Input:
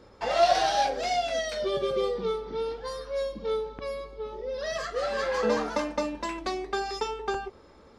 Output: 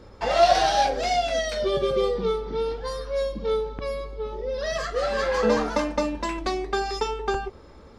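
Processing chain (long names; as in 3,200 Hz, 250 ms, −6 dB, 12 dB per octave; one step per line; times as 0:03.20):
low-shelf EQ 130 Hz +9 dB
level +3.5 dB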